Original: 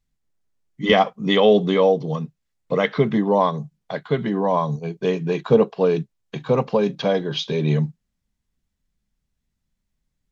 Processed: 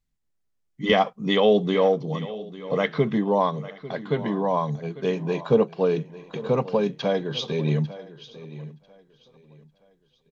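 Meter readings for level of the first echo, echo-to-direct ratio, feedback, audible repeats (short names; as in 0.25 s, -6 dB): -16.5 dB, -15.5 dB, no steady repeat, 3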